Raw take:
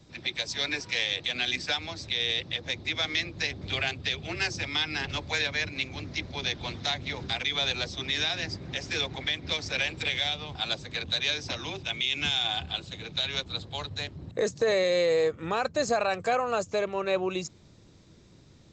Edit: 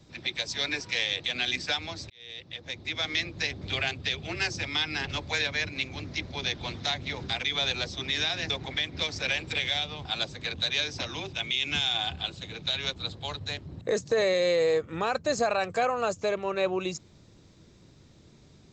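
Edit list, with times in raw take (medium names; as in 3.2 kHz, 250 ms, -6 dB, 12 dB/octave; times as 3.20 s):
2.10–3.18 s: fade in
8.50–9.00 s: delete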